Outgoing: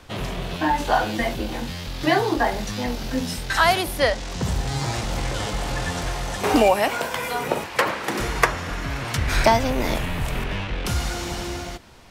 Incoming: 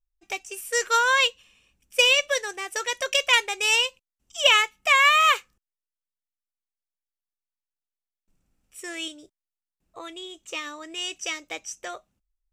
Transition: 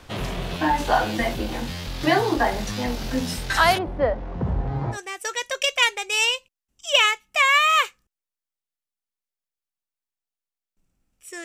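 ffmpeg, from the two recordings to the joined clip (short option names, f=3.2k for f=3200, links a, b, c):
-filter_complex "[0:a]asplit=3[a][b][c];[a]afade=t=out:st=3.77:d=0.02[d];[b]lowpass=1k,afade=t=in:st=3.77:d=0.02,afade=t=out:st=4.98:d=0.02[e];[c]afade=t=in:st=4.98:d=0.02[f];[d][e][f]amix=inputs=3:normalize=0,apad=whole_dur=11.44,atrim=end=11.44,atrim=end=4.98,asetpts=PTS-STARTPTS[g];[1:a]atrim=start=2.41:end=8.95,asetpts=PTS-STARTPTS[h];[g][h]acrossfade=d=0.08:c1=tri:c2=tri"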